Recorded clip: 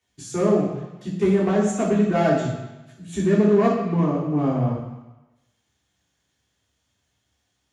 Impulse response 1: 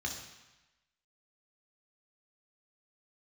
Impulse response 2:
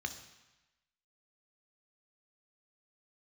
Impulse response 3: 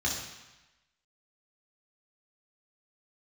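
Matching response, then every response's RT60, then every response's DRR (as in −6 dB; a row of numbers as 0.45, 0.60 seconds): 3; 1.0, 1.0, 1.0 seconds; 0.0, 6.5, −4.0 decibels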